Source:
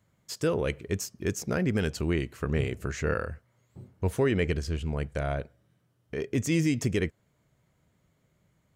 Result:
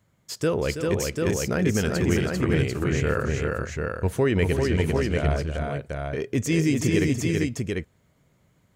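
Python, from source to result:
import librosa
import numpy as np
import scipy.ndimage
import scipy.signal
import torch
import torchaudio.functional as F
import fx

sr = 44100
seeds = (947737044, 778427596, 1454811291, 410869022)

y = fx.echo_multitap(x, sr, ms=(327, 394, 744), db=(-10.0, -3.5, -4.0))
y = y * 10.0 ** (3.0 / 20.0)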